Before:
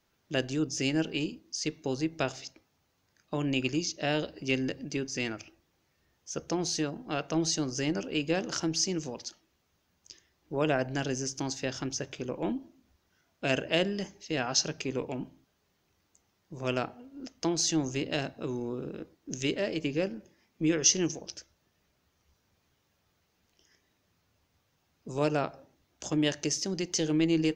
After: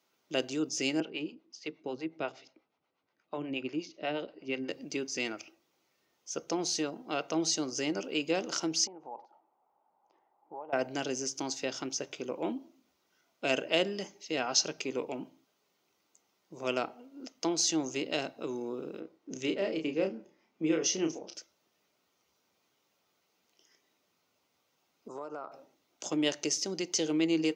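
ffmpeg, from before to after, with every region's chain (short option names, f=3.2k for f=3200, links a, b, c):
-filter_complex "[0:a]asettb=1/sr,asplit=3[a][b][c];[a]atrim=end=1.004[d];[b]atrim=start=1:end=4.69,asetpts=PTS-STARTPTS,afade=t=in:d=0.004:c=qsin,afade=t=out:st=3.686:d=0.004:c=qsin,acrossover=split=460[e][f];[e]aeval=exprs='val(0)*(1-0.7/2+0.7/2*cos(2*PI*8.3*n/s))':c=same[g];[f]aeval=exprs='val(0)*(1-0.7/2-0.7/2*cos(2*PI*8.3*n/s))':c=same[h];[g][h]amix=inputs=2:normalize=0,lowpass=2.8k[i];[c]atrim=start=4.686[j];[d][i]acrossfade=d=0.004:c1=hsin:c2=qsin[k];[k][j]acrossfade=d=0.004:c1=qsin:c2=hsin,asettb=1/sr,asplit=3[l][m][n];[l]atrim=end=8.874[o];[m]atrim=start=8.87:end=10.73,asetpts=PTS-STARTPTS,afade=t=in:d=0.004:c=qsin,afade=t=out:st=1.856:d=0.004:c=qsin,lowshelf=f=330:g=-11.5,acompressor=threshold=-44dB:ratio=10:attack=3.2:release=140:knee=1:detection=peak,lowpass=f=840:t=q:w=7.8[p];[n]atrim=start=10.726[q];[o][p]acrossfade=d=0.004:c1=hsin:c2=qsin[r];[r][q]acrossfade=d=0.004:c1=qsin:c2=hsin,asettb=1/sr,asplit=3[s][t][u];[s]atrim=end=19.004[v];[t]atrim=start=19:end=21.35,asetpts=PTS-STARTPTS,afade=t=in:d=0.004:c=qsin,afade=t=out:st=2.346:d=0.004:c=qsin,highshelf=f=3.6k:g=-11.5,asplit=2[w][x];[x]adelay=31,volume=-5.5dB[y];[w][y]amix=inputs=2:normalize=0,atrim=end_sample=103635[z];[u]atrim=start=21.346[aa];[v][z]acrossfade=d=0.004:c1=hsin:c2=qsin[ab];[ab][aa]acrossfade=d=0.004:c1=qsin:c2=hsin,asettb=1/sr,asplit=3[ac][ad][ae];[ac]atrim=end=25.084[af];[ad]atrim=start=25.08:end=25.52,asetpts=PTS-STARTPTS,afade=t=in:d=0.004:c=qsin,afade=t=out:st=0.436:d=0.004:c=qsin,highpass=f=350:p=1,highshelf=f=1.7k:t=q:w=3:g=-10,acompressor=threshold=-35dB:ratio=12:attack=3.2:release=140:knee=1:detection=peak[ag];[ae]atrim=start=25.516[ah];[af][ag]acrossfade=d=0.004:c1=hsin:c2=qsin[ai];[ai][ah]acrossfade=d=0.004:c1=qsin:c2=hsin,highpass=280,bandreject=f=1.7k:w=6.9"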